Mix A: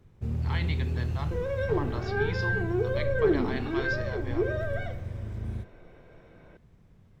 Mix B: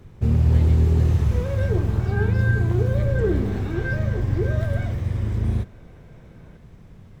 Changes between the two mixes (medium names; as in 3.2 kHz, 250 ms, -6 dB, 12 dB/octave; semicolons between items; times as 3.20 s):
speech -11.0 dB; first sound +12.0 dB